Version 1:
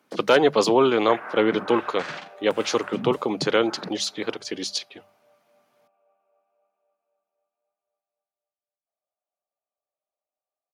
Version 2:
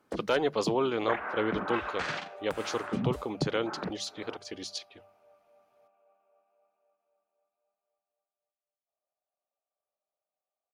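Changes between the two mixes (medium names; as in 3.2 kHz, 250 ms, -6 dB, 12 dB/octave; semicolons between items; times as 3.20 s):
speech -10.0 dB; master: remove high-pass 130 Hz 24 dB/octave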